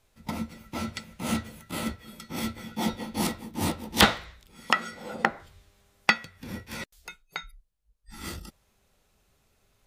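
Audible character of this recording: noise floor -69 dBFS; spectral tilt -4.0 dB/octave

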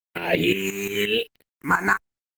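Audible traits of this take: a quantiser's noise floor 8-bit, dither none; tremolo saw up 5.7 Hz, depth 70%; phasing stages 4, 0.95 Hz, lowest notch 520–1200 Hz; Opus

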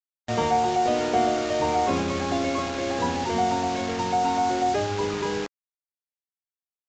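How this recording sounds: a quantiser's noise floor 6-bit, dither none; Vorbis

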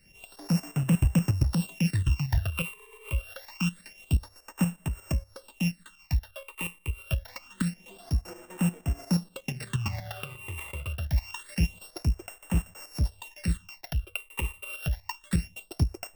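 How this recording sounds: a buzz of ramps at a fixed pitch in blocks of 16 samples; tremolo saw up 8.4 Hz, depth 60%; phasing stages 8, 0.26 Hz, lowest notch 200–4600 Hz

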